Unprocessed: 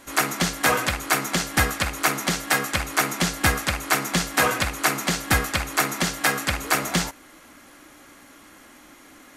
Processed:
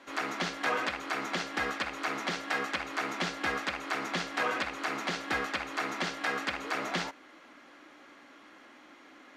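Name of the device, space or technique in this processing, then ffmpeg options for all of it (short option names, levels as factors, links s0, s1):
DJ mixer with the lows and highs turned down: -filter_complex "[0:a]acrossover=split=210 4900:gain=0.112 1 0.0631[s0][s1][s2];[s0][s1][s2]amix=inputs=3:normalize=0,alimiter=limit=0.178:level=0:latency=1:release=108,volume=0.631"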